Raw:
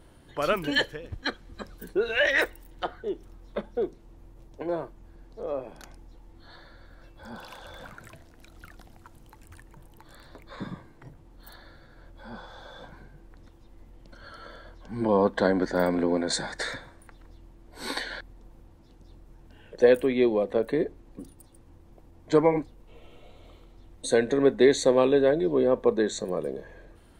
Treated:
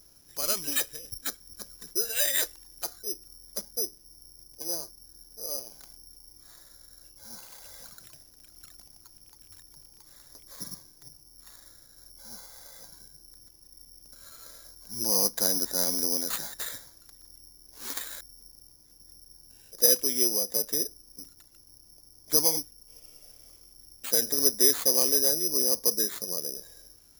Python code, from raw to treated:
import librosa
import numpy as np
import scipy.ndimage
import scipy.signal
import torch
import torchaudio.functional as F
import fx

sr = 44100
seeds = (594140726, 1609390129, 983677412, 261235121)

y = (np.kron(x[::8], np.eye(8)[0]) * 8)[:len(x)]
y = F.gain(torch.from_numpy(y), -12.0).numpy()